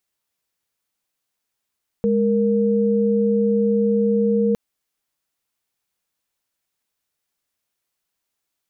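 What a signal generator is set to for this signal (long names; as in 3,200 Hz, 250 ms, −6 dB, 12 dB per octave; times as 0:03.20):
held notes G#3/A#4 sine, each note −18 dBFS 2.51 s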